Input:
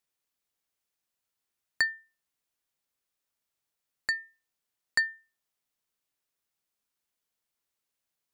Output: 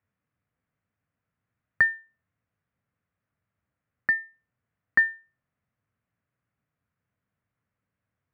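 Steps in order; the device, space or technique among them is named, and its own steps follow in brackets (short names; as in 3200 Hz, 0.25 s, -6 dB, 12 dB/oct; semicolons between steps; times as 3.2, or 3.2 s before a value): 1.94–4.13 LPF 8100 Hz 12 dB/oct; sub-octave bass pedal (octaver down 1 oct, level +2 dB; speaker cabinet 69–2000 Hz, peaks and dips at 99 Hz +4 dB, 360 Hz -8 dB, 870 Hz -6 dB); gain +8 dB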